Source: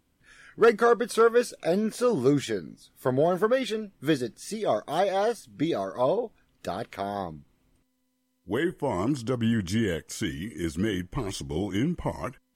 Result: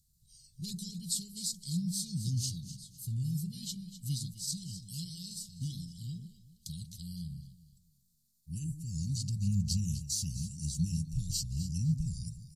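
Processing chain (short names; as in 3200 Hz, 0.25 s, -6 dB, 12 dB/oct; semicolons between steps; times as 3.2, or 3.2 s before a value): Chebyshev band-stop 190–4700 Hz, order 4; high shelf 3900 Hz +6 dB; pitch shift -2 st; echo with dull and thin repeats by turns 0.127 s, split 1100 Hz, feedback 53%, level -8 dB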